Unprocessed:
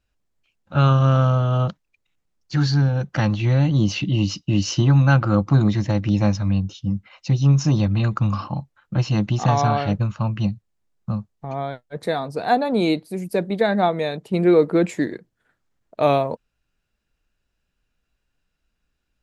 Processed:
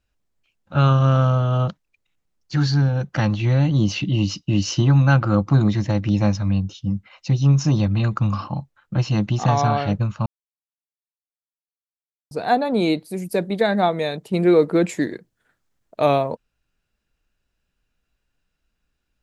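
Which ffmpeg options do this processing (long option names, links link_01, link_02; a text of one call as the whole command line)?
ffmpeg -i in.wav -filter_complex "[0:a]asettb=1/sr,asplit=3[link_01][link_02][link_03];[link_01]atrim=end=13.004[link_04];[link_02]atrim=start=13:end=16.06,asetpts=PTS-STARTPTS,afade=type=in:duration=0.004:curve=qsin,afade=type=out:start_time=3.056:duration=0.004:curve=qsin,highshelf=frequency=4500:gain=5.5[link_05];[link_03]atrim=start=16.056[link_06];[link_04][link_05]acrossfade=duration=0.004:curve1=hsin:curve2=qsin[link_07];[link_07][link_06]acrossfade=duration=0.004:curve1=qsin:curve2=hsin,asplit=3[link_08][link_09][link_10];[link_08]atrim=end=10.26,asetpts=PTS-STARTPTS,afade=type=out:start_time=10.256:duration=0.004:curve=hsin[link_11];[link_09]atrim=start=10.26:end=12.31,asetpts=PTS-STARTPTS,volume=0[link_12];[link_10]atrim=start=12.31,asetpts=PTS-STARTPTS,afade=type=in:duration=0.004:curve=hsin[link_13];[link_11][link_12][link_13]concat=n=3:v=0:a=1" out.wav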